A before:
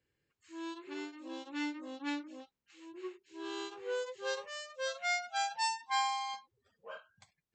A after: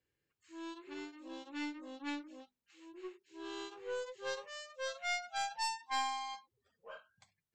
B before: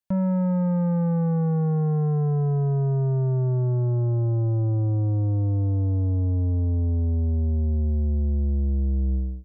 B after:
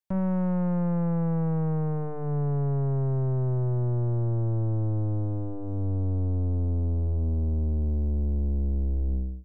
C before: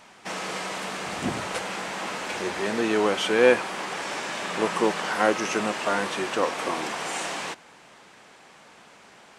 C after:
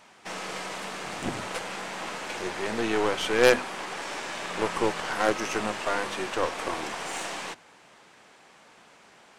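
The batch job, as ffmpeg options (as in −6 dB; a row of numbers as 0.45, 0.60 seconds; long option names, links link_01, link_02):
-af "aeval=exprs='0.631*(cos(1*acos(clip(val(0)/0.631,-1,1)))-cos(1*PI/2))+0.0708*(cos(3*acos(clip(val(0)/0.631,-1,1)))-cos(3*PI/2))+0.1*(cos(6*acos(clip(val(0)/0.631,-1,1)))-cos(6*PI/2))+0.1*(cos(8*acos(clip(val(0)/0.631,-1,1)))-cos(8*PI/2))':channel_layout=same,bandreject=frequency=50:width_type=h:width=6,bandreject=frequency=100:width_type=h:width=6,bandreject=frequency=150:width_type=h:width=6,bandreject=frequency=200:width_type=h:width=6,bandreject=frequency=250:width_type=h:width=6"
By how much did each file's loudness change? −3.5, −4.0, −2.5 LU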